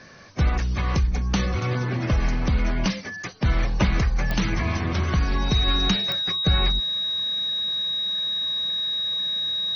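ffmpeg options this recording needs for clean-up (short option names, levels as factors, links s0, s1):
-af "adeclick=t=4,bandreject=f=3800:w=30"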